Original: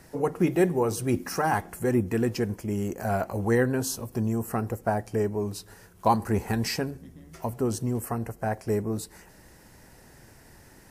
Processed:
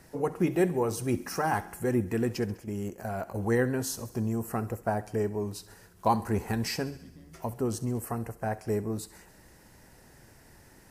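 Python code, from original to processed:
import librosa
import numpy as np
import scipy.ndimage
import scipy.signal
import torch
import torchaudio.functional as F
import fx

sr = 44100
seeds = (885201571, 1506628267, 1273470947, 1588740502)

y = fx.level_steps(x, sr, step_db=10, at=(2.55, 3.36))
y = fx.echo_thinned(y, sr, ms=67, feedback_pct=64, hz=590.0, wet_db=-17.0)
y = y * librosa.db_to_amplitude(-3.0)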